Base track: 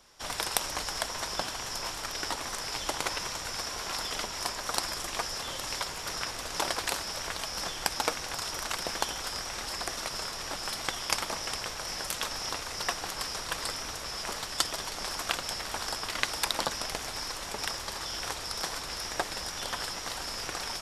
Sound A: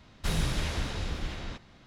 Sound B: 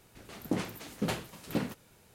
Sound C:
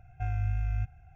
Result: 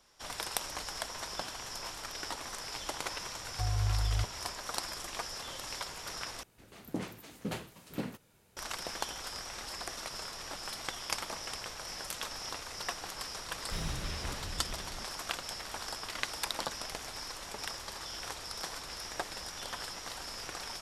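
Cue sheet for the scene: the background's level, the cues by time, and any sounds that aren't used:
base track -6 dB
3.39 add C -1 dB + steep low-pass 880 Hz
6.43 replace with B -5.5 dB
13.47 add A -8.5 dB

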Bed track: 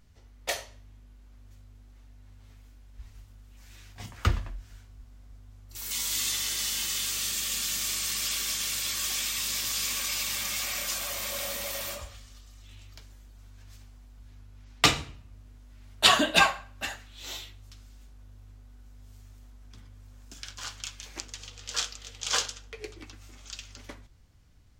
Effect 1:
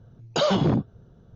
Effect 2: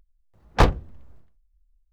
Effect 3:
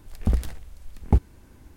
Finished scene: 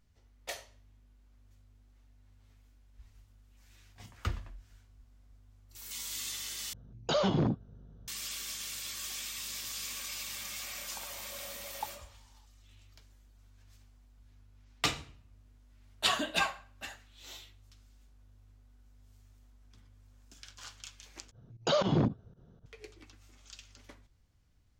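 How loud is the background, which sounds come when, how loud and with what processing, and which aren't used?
bed track -9.5 dB
6.73 replace with 1 -7 dB + hum 50 Hz, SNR 22 dB
10.7 add 3 -17.5 dB + resonant high-pass 890 Hz, resonance Q 9.4
21.31 replace with 1 -5.5 dB + pump 117 bpm, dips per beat 2, -19 dB, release 84 ms
not used: 2

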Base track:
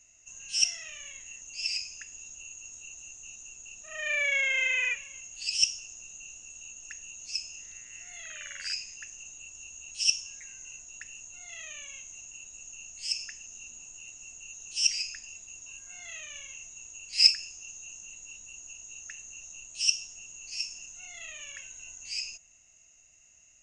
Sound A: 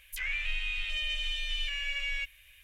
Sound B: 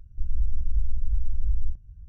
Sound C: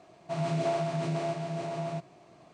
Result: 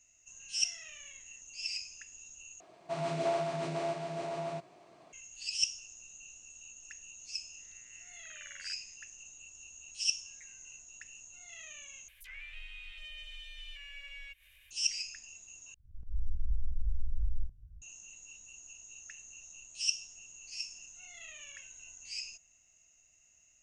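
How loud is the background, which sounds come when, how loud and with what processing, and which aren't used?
base track -6 dB
2.6 replace with C -1.5 dB + tone controls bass -9 dB, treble 0 dB
12.08 replace with A -14 dB + upward compressor, threshold -36 dBFS
15.74 replace with B -8 dB + auto swell 0.17 s

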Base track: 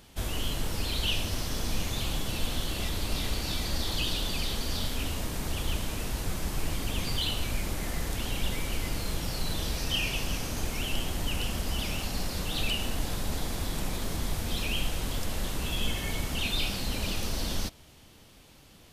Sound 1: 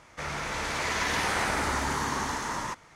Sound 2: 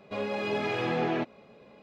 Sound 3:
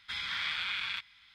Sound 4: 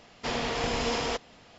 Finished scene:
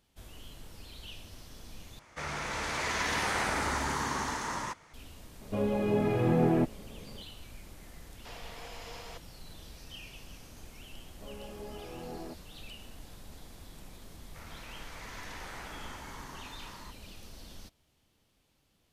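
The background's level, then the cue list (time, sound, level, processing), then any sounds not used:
base track -17.5 dB
1.99 replace with 1 -3 dB
5.41 add 2 -3.5 dB + tilt -4.5 dB/oct
8.01 add 4 -16 dB + HPF 460 Hz 24 dB/oct
11.1 add 2 -14 dB + LPF 1100 Hz
14.17 add 1 -17 dB + LPF 8900 Hz
not used: 3

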